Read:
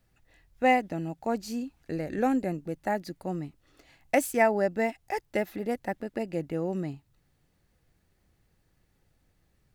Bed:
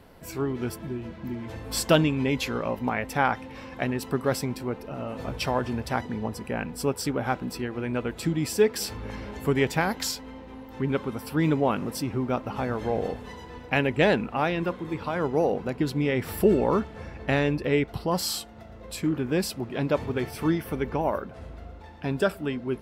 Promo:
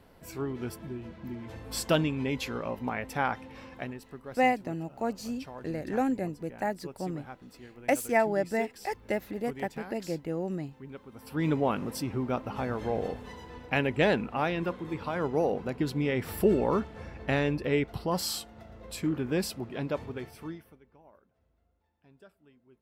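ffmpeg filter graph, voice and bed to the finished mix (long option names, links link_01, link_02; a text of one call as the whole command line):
ffmpeg -i stem1.wav -i stem2.wav -filter_complex "[0:a]adelay=3750,volume=-2dB[link_01];[1:a]volume=9dB,afade=type=out:start_time=3.65:duration=0.4:silence=0.237137,afade=type=in:start_time=11.11:duration=0.41:silence=0.188365,afade=type=out:start_time=19.43:duration=1.36:silence=0.0398107[link_02];[link_01][link_02]amix=inputs=2:normalize=0" out.wav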